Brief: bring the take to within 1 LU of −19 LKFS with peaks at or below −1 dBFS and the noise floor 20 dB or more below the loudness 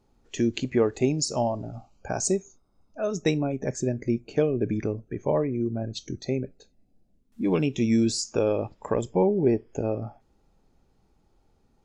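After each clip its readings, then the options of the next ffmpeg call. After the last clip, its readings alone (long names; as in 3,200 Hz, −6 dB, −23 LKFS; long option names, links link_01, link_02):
integrated loudness −27.0 LKFS; sample peak −11.0 dBFS; target loudness −19.0 LKFS
→ -af "volume=8dB"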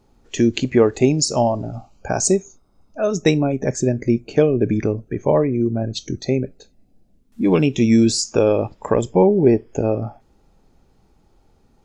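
integrated loudness −19.0 LKFS; sample peak −3.0 dBFS; background noise floor −59 dBFS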